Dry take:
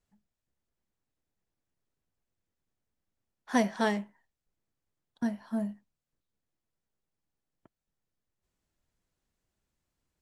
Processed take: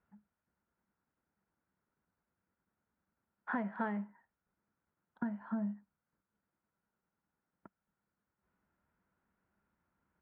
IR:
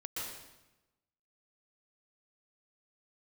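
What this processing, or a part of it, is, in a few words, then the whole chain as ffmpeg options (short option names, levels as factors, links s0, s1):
bass amplifier: -af "acompressor=threshold=0.00794:ratio=4,highpass=67,equalizer=f=120:t=q:w=4:g=-5,equalizer=f=200:t=q:w=4:g=7,equalizer=f=930:t=q:w=4:g=6,equalizer=f=1400:t=q:w=4:g=10,lowpass=f=2200:w=0.5412,lowpass=f=2200:w=1.3066,volume=1.26"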